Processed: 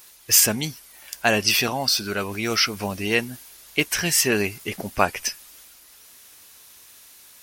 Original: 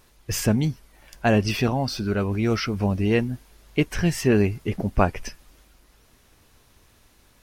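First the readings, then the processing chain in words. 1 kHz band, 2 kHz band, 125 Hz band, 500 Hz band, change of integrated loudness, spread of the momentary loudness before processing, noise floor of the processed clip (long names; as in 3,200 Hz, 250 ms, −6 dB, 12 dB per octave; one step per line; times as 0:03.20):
+2.0 dB, +6.5 dB, −9.5 dB, −2.0 dB, +2.5 dB, 9 LU, −50 dBFS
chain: spectral tilt +4 dB per octave
level +2.5 dB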